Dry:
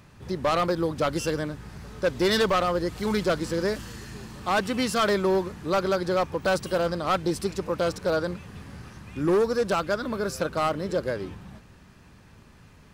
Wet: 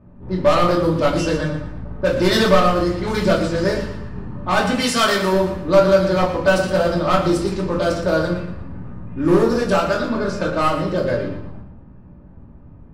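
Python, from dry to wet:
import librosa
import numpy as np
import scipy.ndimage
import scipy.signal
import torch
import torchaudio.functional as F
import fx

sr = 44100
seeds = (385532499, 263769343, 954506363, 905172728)

p1 = fx.env_lowpass(x, sr, base_hz=610.0, full_db=-21.0)
p2 = fx.tilt_eq(p1, sr, slope=2.0, at=(4.73, 5.33))
p3 = p2 + fx.echo_feedback(p2, sr, ms=117, feedback_pct=34, wet_db=-10.5, dry=0)
p4 = fx.room_shoebox(p3, sr, seeds[0], volume_m3=320.0, walls='furnished', distance_m=2.6)
y = p4 * librosa.db_to_amplitude(2.0)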